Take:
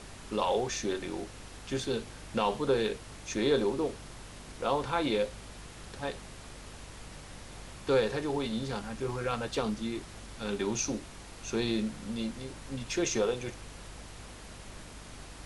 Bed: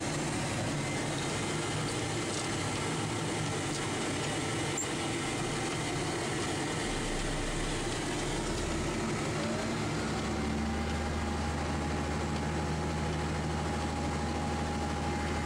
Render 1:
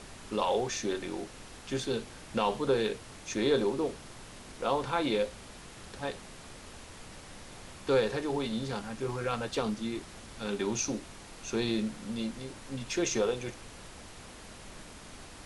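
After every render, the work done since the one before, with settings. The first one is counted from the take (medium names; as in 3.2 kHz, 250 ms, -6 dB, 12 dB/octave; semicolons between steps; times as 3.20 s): de-hum 50 Hz, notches 3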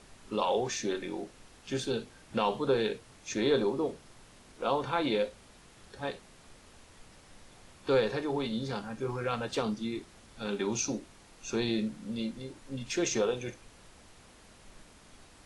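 noise print and reduce 8 dB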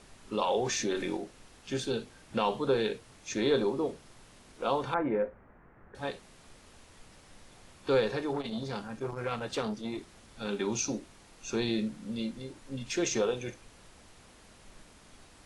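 0.58–1.17 s: level flattener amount 50%; 4.94–5.95 s: steep low-pass 1.9 kHz; 8.33–9.98 s: transformer saturation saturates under 870 Hz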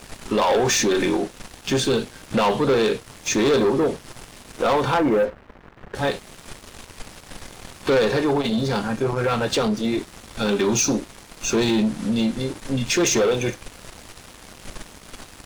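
waveshaping leveller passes 3; in parallel at +3 dB: compression, threshold -32 dBFS, peak gain reduction 12.5 dB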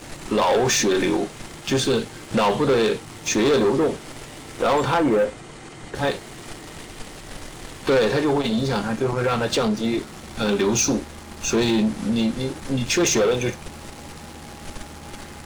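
add bed -7.5 dB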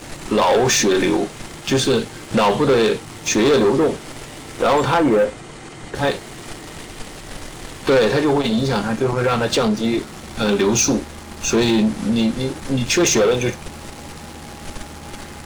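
trim +3.5 dB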